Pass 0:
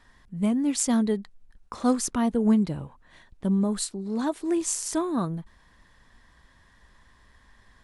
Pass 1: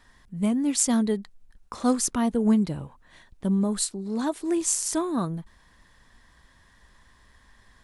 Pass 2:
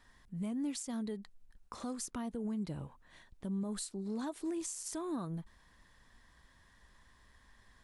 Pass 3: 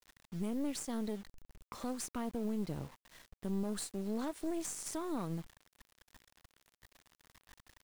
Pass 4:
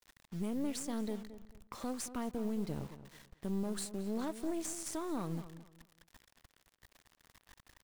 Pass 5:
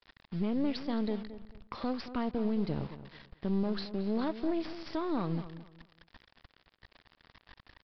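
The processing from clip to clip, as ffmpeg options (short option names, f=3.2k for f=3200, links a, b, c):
-af "highshelf=f=5k:g=5"
-af "acompressor=threshold=-26dB:ratio=4,alimiter=limit=-24dB:level=0:latency=1:release=132,volume=-6.5dB"
-af "aeval=exprs='(tanh(50.1*val(0)+0.75)-tanh(0.75))/50.1':c=same,acrusher=bits=9:mix=0:aa=0.000001,volume=4dB"
-filter_complex "[0:a]asplit=2[a][b];[b]adelay=220,lowpass=f=2.6k:p=1,volume=-13dB,asplit=2[c][d];[d]adelay=220,lowpass=f=2.6k:p=1,volume=0.27,asplit=2[e][f];[f]adelay=220,lowpass=f=2.6k:p=1,volume=0.27[g];[a][c][e][g]amix=inputs=4:normalize=0"
-af "aresample=11025,aresample=44100,volume=5.5dB"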